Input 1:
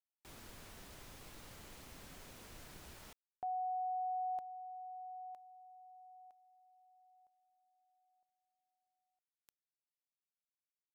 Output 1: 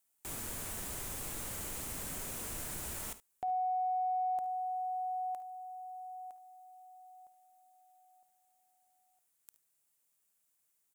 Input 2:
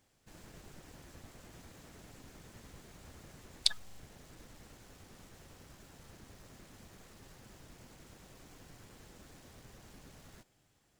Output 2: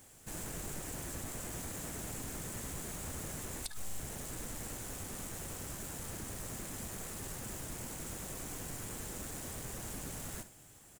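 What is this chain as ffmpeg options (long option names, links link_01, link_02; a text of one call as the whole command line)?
ffmpeg -i in.wav -af "highshelf=frequency=6300:width_type=q:width=1.5:gain=8,acompressor=threshold=-43dB:ratio=16:attack=0.33:release=56:knee=6:detection=rms,aecho=1:1:54|72:0.158|0.15,volume=11.5dB" out.wav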